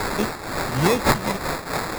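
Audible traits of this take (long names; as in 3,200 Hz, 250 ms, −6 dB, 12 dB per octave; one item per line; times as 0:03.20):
a quantiser's noise floor 6 bits, dither triangular
phaser sweep stages 2, 2.2 Hz, lowest notch 340–1,100 Hz
aliases and images of a low sample rate 3,000 Hz, jitter 0%
amplitude modulation by smooth noise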